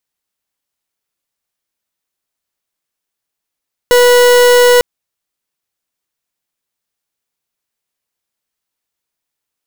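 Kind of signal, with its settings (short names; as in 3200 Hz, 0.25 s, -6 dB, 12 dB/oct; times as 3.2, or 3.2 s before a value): pulse 489 Hz, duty 41% -7 dBFS 0.90 s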